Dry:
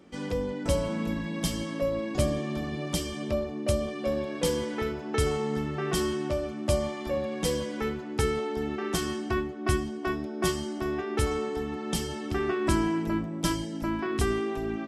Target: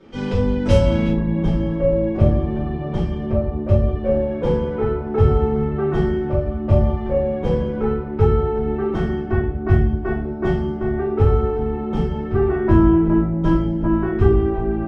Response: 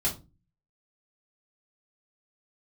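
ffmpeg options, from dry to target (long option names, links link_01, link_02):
-filter_complex "[0:a]asetnsamples=nb_out_samples=441:pad=0,asendcmd='1.08 lowpass f 1200',lowpass=4200[link_01];[1:a]atrim=start_sample=2205,asetrate=26460,aresample=44100[link_02];[link_01][link_02]afir=irnorm=-1:irlink=0,volume=-1.5dB"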